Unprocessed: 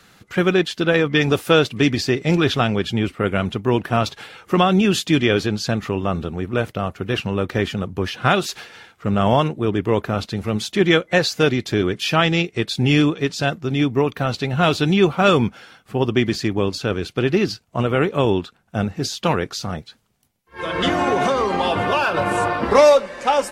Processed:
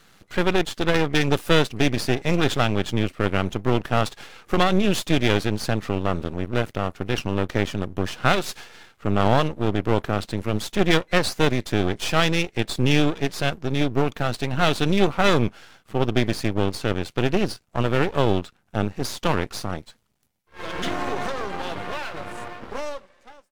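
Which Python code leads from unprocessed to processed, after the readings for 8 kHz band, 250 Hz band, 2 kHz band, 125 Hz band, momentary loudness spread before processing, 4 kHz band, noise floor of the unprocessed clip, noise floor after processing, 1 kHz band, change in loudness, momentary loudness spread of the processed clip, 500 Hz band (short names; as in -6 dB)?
-2.5 dB, -4.0 dB, -3.5 dB, -3.0 dB, 8 LU, -3.5 dB, -58 dBFS, -61 dBFS, -4.5 dB, -4.0 dB, 11 LU, -5.5 dB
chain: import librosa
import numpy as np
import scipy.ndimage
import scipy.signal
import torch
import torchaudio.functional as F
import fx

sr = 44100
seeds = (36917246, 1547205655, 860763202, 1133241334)

y = fx.fade_out_tail(x, sr, length_s=3.87)
y = np.maximum(y, 0.0)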